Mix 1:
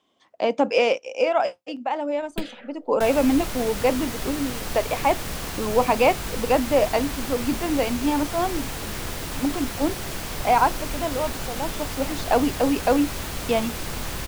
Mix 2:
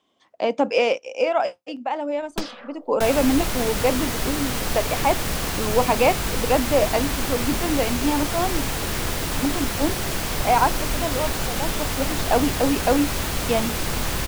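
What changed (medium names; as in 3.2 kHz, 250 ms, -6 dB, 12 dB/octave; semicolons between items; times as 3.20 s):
first sound: remove static phaser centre 2.5 kHz, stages 4; second sound +5.5 dB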